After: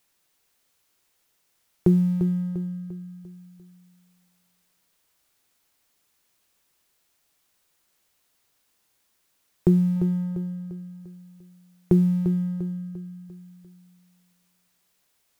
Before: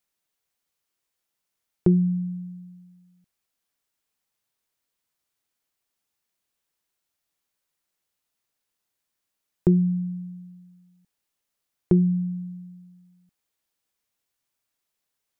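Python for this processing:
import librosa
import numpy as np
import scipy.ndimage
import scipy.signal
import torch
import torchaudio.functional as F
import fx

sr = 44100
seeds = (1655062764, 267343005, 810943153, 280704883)

y = fx.law_mismatch(x, sr, coded='mu')
y = fx.peak_eq(y, sr, hz=730.0, db=7.5, octaves=0.95, at=(9.96, 10.6))
y = fx.echo_feedback(y, sr, ms=347, feedback_pct=45, wet_db=-10)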